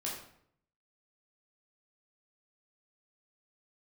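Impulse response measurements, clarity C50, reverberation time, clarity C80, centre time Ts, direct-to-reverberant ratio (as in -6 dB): 3.5 dB, 0.65 s, 7.0 dB, 43 ms, -4.5 dB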